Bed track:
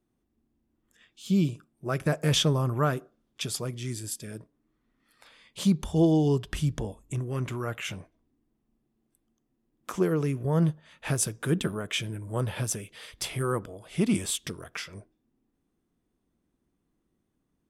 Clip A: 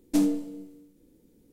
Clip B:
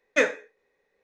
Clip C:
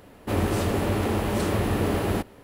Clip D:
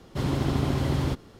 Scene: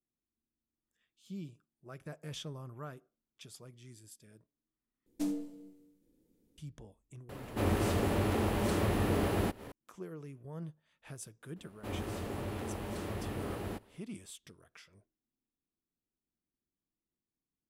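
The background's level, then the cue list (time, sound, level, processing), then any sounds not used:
bed track −19.5 dB
0:05.06: overwrite with A −11.5 dB
0:07.29: mix in C −6 dB + upward compression 4 to 1, threshold −33 dBFS
0:11.56: mix in C −14.5 dB
not used: B, D

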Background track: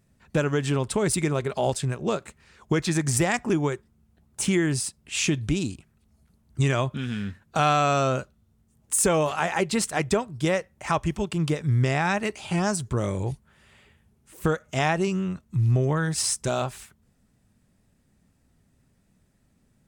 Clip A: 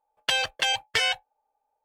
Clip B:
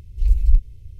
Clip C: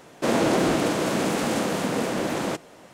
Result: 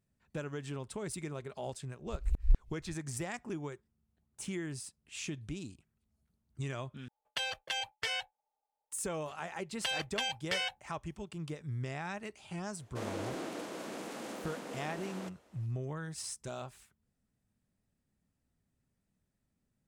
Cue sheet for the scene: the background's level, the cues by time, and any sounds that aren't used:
background track −16 dB
0:01.96: mix in B −4 dB + tremolo with a ramp in dB swelling 5.1 Hz, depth 36 dB
0:07.08: overwrite with A −11.5 dB
0:09.56: mix in A −10.5 dB
0:12.73: mix in C −17.5 dB + high-pass filter 220 Hz

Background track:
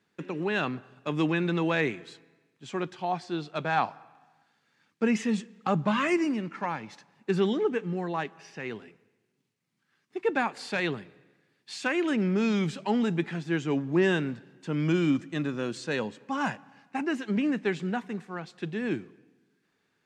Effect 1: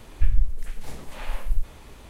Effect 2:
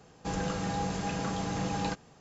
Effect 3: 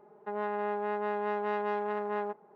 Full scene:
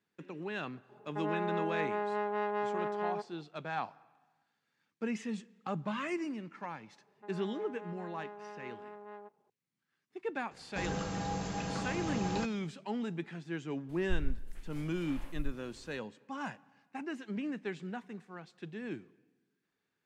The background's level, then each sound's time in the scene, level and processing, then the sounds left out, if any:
background track −10.5 dB
0:00.89: mix in 3 −2 dB
0:06.96: mix in 3 −15.5 dB
0:10.51: mix in 2 −4 dB
0:13.89: mix in 1 −14 dB

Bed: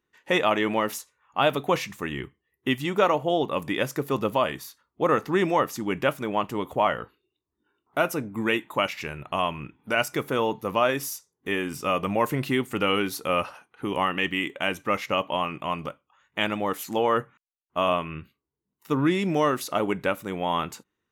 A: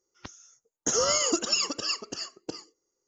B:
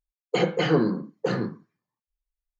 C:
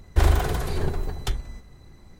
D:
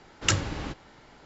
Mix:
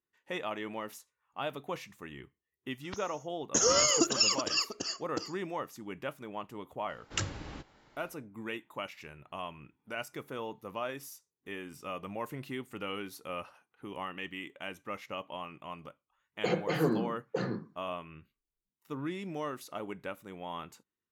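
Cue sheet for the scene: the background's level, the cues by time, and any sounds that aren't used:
bed −14.5 dB
0:02.68: mix in A −0.5 dB
0:06.89: mix in D −9.5 dB
0:16.10: mix in B −7.5 dB + notch filter 3,000 Hz, Q 18
not used: C

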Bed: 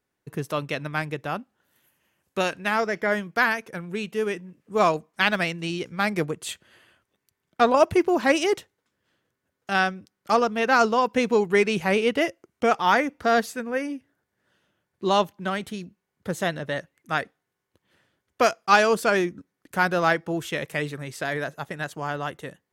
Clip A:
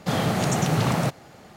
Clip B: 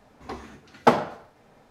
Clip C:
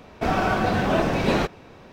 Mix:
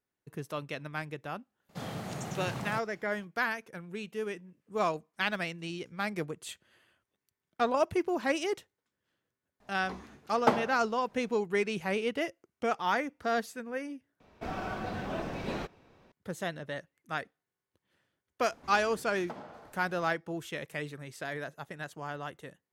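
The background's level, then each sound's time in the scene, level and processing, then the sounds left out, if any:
bed −9.5 dB
0:01.69: mix in A −15.5 dB
0:09.60: mix in B −7.5 dB
0:14.20: overwrite with C −14.5 dB
0:18.43: mix in B −2.5 dB + downward compressor 3 to 1, threshold −45 dBFS

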